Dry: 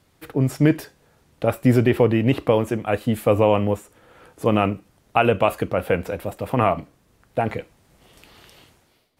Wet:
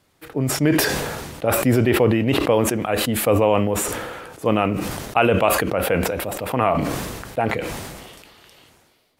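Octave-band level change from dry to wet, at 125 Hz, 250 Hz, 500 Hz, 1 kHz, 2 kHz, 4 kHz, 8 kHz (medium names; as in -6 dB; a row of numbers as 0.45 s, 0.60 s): -1.0 dB, +0.5 dB, +1.0 dB, +1.5 dB, +4.5 dB, +8.0 dB, +16.5 dB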